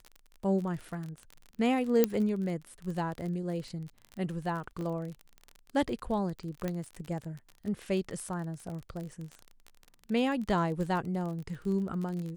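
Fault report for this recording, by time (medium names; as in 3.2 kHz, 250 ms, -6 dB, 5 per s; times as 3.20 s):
crackle 33 per s -36 dBFS
2.04 s: pop -10 dBFS
4.81 s: dropout 2.6 ms
6.68 s: pop -20 dBFS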